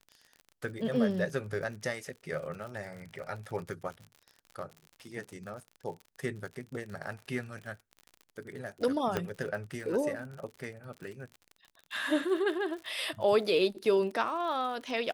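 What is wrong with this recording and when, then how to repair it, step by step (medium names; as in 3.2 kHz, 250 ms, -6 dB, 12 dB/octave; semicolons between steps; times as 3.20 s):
crackle 57 per s -40 dBFS
9.17 s: pop -16 dBFS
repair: de-click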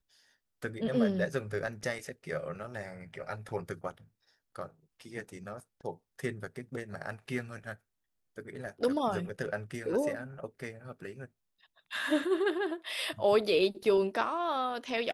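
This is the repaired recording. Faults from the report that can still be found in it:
9.17 s: pop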